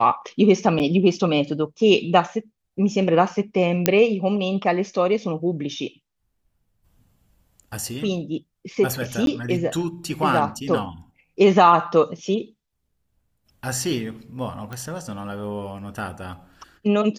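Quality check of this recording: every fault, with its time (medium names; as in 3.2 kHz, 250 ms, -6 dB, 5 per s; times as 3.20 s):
0.79–0.80 s: dropout 8.5 ms
3.86 s: pop -1 dBFS
9.26–9.27 s: dropout 12 ms
14.73 s: pop -19 dBFS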